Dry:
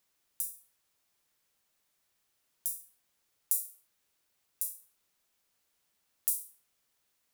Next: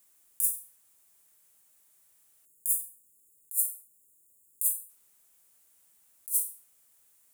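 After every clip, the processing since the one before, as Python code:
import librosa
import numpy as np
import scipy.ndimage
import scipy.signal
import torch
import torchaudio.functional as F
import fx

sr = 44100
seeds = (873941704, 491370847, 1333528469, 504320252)

y = fx.spec_erase(x, sr, start_s=2.46, length_s=2.43, low_hz=540.0, high_hz=6600.0)
y = fx.high_shelf_res(y, sr, hz=6500.0, db=9.0, q=1.5)
y = fx.over_compress(y, sr, threshold_db=-26.0, ratio=-0.5)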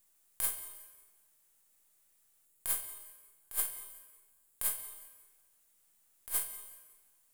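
y = np.where(x < 0.0, 10.0 ** (-7.0 / 20.0) * x, x)
y = fx.echo_feedback(y, sr, ms=183, feedback_pct=42, wet_db=-22.5)
y = fx.rev_plate(y, sr, seeds[0], rt60_s=1.4, hf_ratio=0.85, predelay_ms=115, drr_db=12.5)
y = y * 10.0 ** (-3.5 / 20.0)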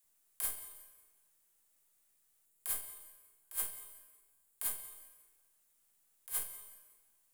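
y = fx.dispersion(x, sr, late='lows', ms=47.0, hz=410.0)
y = y * 10.0 ** (-3.5 / 20.0)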